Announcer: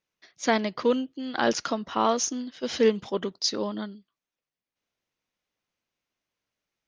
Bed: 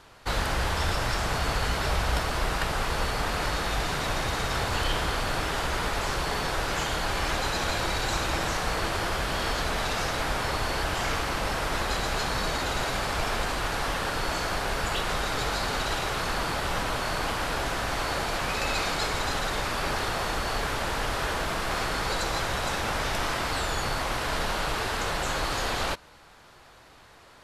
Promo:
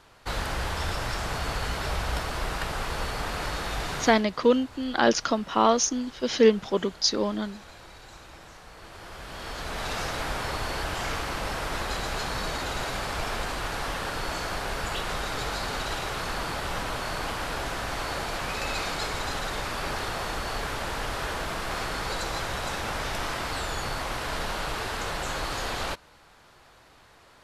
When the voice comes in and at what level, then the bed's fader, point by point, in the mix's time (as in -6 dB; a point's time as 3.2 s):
3.60 s, +3.0 dB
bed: 4.03 s -3 dB
4.26 s -19.5 dB
8.72 s -19.5 dB
9.92 s -2.5 dB